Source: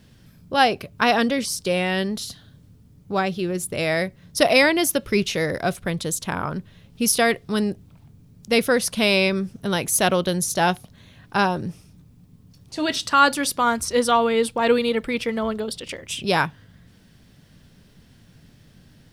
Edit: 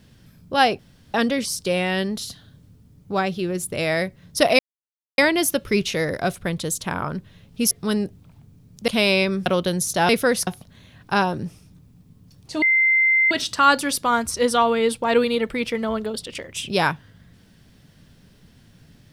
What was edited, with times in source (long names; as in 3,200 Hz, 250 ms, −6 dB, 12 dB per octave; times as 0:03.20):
0:00.79–0:01.14: fill with room tone
0:04.59: splice in silence 0.59 s
0:07.12–0:07.37: remove
0:08.54–0:08.92: move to 0:10.70
0:09.50–0:10.07: remove
0:12.85: insert tone 2,080 Hz −14 dBFS 0.69 s